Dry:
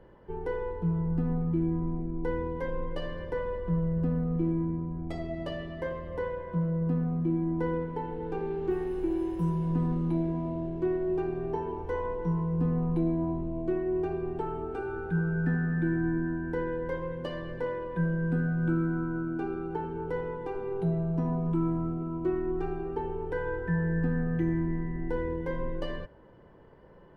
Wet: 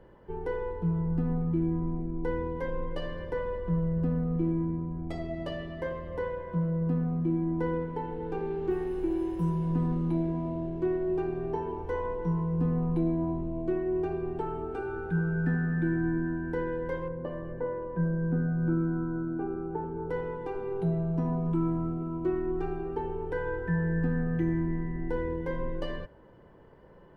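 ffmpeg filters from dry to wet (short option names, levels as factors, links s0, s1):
-filter_complex "[0:a]asettb=1/sr,asplit=3[s0][s1][s2];[s0]atrim=end=17.084[s3];[s1]atrim=start=17.08:end=20.1,asetpts=PTS-STARTPTS,afade=t=in:d=0.004:c=qsin,afade=t=out:st=3.016:d=0.004:c=qsin,lowpass=1200[s4];[s2]atrim=start=20.096[s5];[s3][s4]acrossfade=d=0.004:c1=hsin:c2=qsin[s6];[s6][s5]acrossfade=d=0.004:c1=qsin:c2=hsin"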